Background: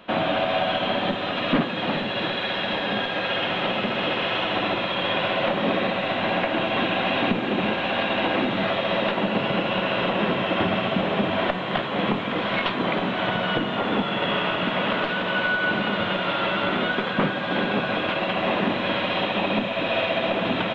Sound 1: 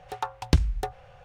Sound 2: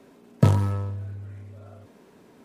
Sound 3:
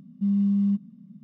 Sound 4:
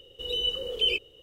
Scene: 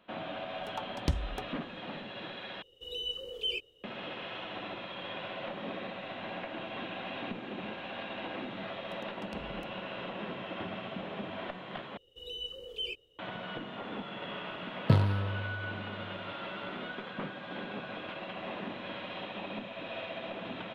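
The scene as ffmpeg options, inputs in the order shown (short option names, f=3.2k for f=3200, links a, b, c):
-filter_complex "[1:a]asplit=2[a][b];[4:a]asplit=2[c][d];[0:a]volume=-16.5dB[e];[c]lowshelf=f=180:g=-3.5[f];[b]acompressor=threshold=-33dB:ratio=6:attack=3.2:release=140:knee=1:detection=peak[g];[2:a]highshelf=f=5.4k:t=q:w=3:g=-8.5[h];[e]asplit=3[i][j][k];[i]atrim=end=2.624[l];[f]atrim=end=1.22,asetpts=PTS-STARTPTS,volume=-8.5dB[m];[j]atrim=start=3.836:end=11.974[n];[d]atrim=end=1.22,asetpts=PTS-STARTPTS,volume=-12dB[o];[k]atrim=start=13.186[p];[a]atrim=end=1.24,asetpts=PTS-STARTPTS,volume=-9.5dB,afade=t=in:d=0.004:c=hsin,afade=t=out:st=1.236:d=0.004:c=hsin,adelay=550[q];[g]atrim=end=1.24,asetpts=PTS-STARTPTS,volume=-15dB,afade=t=in:d=0.004:c=hsin,afade=t=out:st=1.236:d=0.004:c=hsin,adelay=8800[r];[h]atrim=end=2.44,asetpts=PTS-STARTPTS,volume=-6dB,afade=t=in:d=0.004:c=hsin,afade=t=out:st=2.436:d=0.004:c=hsin,adelay=14470[s];[l][m]acrossfade=d=0.004:c1=hsin:c2=hsin[t];[t][n]acrossfade=d=0.004:c1=hsin:c2=hsin[u];[u][o]acrossfade=d=0.004:c1=hsin:c2=hsin[v];[v][p]acrossfade=d=0.004:c1=hsin:c2=hsin[w];[w][q][r][s]amix=inputs=4:normalize=0"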